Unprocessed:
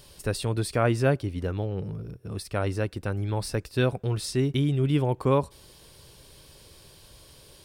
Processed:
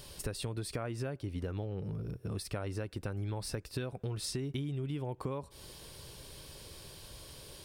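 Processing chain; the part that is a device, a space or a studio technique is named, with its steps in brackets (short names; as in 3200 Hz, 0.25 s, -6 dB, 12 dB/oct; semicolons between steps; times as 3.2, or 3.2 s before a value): serial compression, leveller first (compressor 2.5:1, threshold -26 dBFS, peak gain reduction 6.5 dB; compressor, threshold -36 dBFS, peak gain reduction 12.5 dB); gain +1.5 dB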